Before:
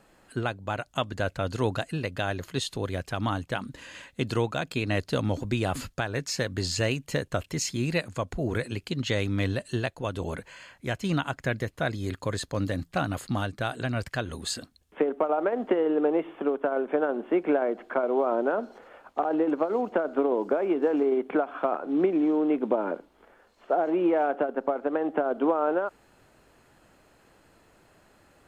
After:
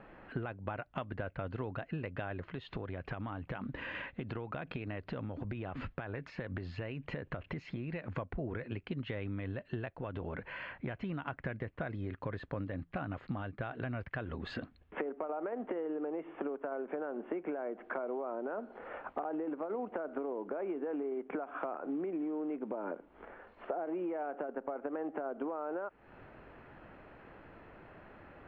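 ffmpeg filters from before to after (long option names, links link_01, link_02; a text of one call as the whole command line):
ffmpeg -i in.wav -filter_complex "[0:a]asettb=1/sr,asplit=3[link_01][link_02][link_03];[link_01]atrim=end=2.444[link_04];[link_02]atrim=start=2.44:end=8.17,asetpts=PTS-STARTPTS,afade=type=in:duration=0.004:curve=qsin,afade=type=out:start_time=5.726:duration=0.004:curve=qsin,acompressor=threshold=-38dB:ratio=6:attack=3.2:release=140:knee=1:detection=peak[link_05];[link_03]atrim=start=8.166[link_06];[link_04][link_05]acrossfade=duration=0.004:curve1=hsin:curve2=qsin[link_07];[link_07][link_06]acrossfade=duration=0.004:curve1=qsin:curve2=hsin,asettb=1/sr,asplit=3[link_08][link_09][link_10];[link_08]atrim=end=9.974[link_11];[link_09]atrim=start=9.97:end=11.28,asetpts=PTS-STARTPTS,afade=type=in:duration=0.004:curve=qsin,afade=type=out:start_time=1.306:duration=0.004:curve=qsin,acompressor=threshold=-35dB:ratio=2.5:attack=3.2:release=140:knee=1:detection=peak[link_12];[link_10]atrim=start=11.276[link_13];[link_11][link_12]acrossfade=duration=0.004:curve1=hsin:curve2=qsin[link_14];[link_14][link_13]acrossfade=duration=0.004:curve1=qsin:curve2=hsin,lowpass=frequency=2500:width=0.5412,lowpass=frequency=2500:width=1.3066,alimiter=limit=-18.5dB:level=0:latency=1:release=37,acompressor=threshold=-41dB:ratio=8,volume=5.5dB" out.wav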